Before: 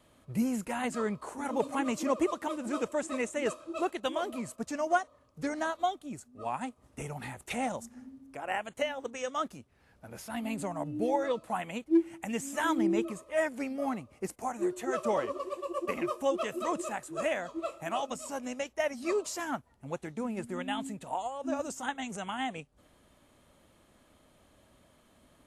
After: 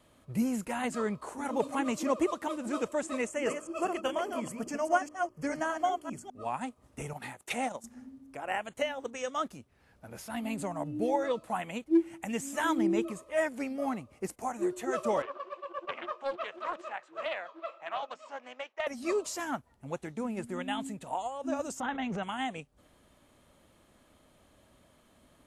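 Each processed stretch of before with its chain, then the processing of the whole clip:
3.27–6.31 s: chunks repeated in reverse 202 ms, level -5.5 dB + Butterworth band-stop 3.8 kHz, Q 3.3 + hum notches 60/120/180/240/300/360/420/480 Hz
7.13–7.84 s: high-pass 250 Hz 6 dB/octave + transient shaper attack +3 dB, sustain -8 dB
15.22–18.87 s: band-pass 720–3400 Hz + distance through air 78 m + loudspeaker Doppler distortion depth 0.24 ms
21.80–22.23 s: distance through air 270 m + level flattener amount 70%
whole clip: none

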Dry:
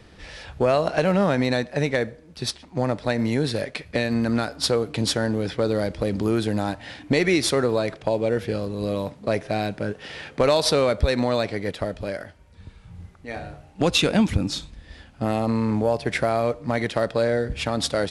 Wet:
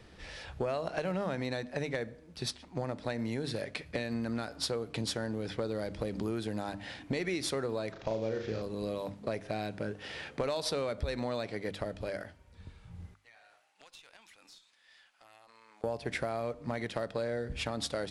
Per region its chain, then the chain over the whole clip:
7.92–8.62 s: CVSD coder 32 kbps + flutter echo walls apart 6.2 m, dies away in 0.38 s
13.14–15.84 s: high-pass 1.2 kHz + compression 4:1, threshold -47 dBFS + valve stage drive 34 dB, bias 0.7
whole clip: hum notches 50/100/150/200/250/300 Hz; compression 3:1, threshold -27 dBFS; trim -5.5 dB

